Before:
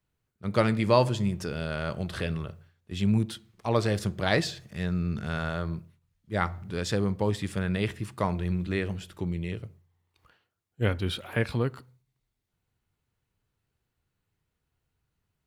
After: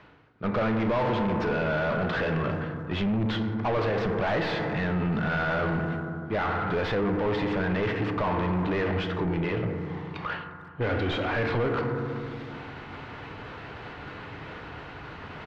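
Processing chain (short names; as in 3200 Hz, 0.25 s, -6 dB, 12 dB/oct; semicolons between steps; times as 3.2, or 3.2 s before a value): tracing distortion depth 0.24 ms; in parallel at -1 dB: compressor, threshold -33 dBFS, peak gain reduction 15.5 dB; on the sum: high shelf 3700 Hz -7.5 dB; reverse; upward compressor, threshold -26 dBFS; reverse; FDN reverb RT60 2 s, low-frequency decay 1.45×, high-frequency decay 0.3×, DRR 9 dB; limiter -18.5 dBFS, peak gain reduction 10.5 dB; overdrive pedal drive 26 dB, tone 3500 Hz, clips at -17 dBFS; air absorption 250 m; speakerphone echo 0.35 s, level -23 dB; gain -1.5 dB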